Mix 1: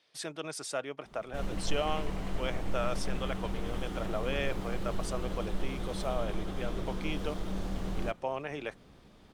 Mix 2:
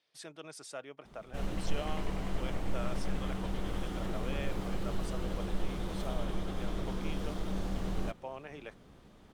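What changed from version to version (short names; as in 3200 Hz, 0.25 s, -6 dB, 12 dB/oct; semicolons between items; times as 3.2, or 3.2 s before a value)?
speech -8.5 dB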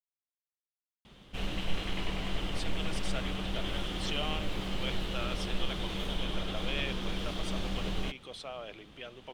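speech: entry +2.40 s; master: add bell 3100 Hz +13 dB 1.2 oct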